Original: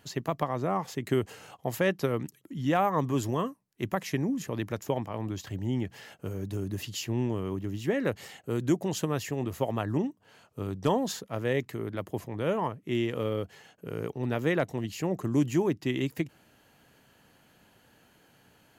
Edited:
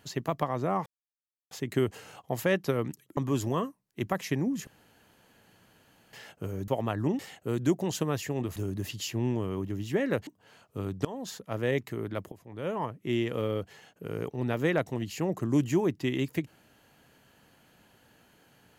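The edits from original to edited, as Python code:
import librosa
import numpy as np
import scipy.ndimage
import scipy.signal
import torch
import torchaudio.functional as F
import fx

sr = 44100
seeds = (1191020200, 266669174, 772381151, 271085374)

y = fx.edit(x, sr, fx.insert_silence(at_s=0.86, length_s=0.65),
    fx.cut(start_s=2.52, length_s=0.47),
    fx.room_tone_fill(start_s=4.49, length_s=1.46),
    fx.swap(start_s=6.5, length_s=1.71, other_s=9.58, other_length_s=0.51),
    fx.fade_in_from(start_s=10.87, length_s=0.49, floor_db=-21.0),
    fx.fade_in_from(start_s=12.14, length_s=0.67, floor_db=-20.0), tone=tone)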